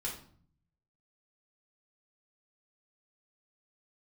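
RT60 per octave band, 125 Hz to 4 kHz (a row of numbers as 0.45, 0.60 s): 1.1, 0.80, 0.55, 0.50, 0.40, 0.40 s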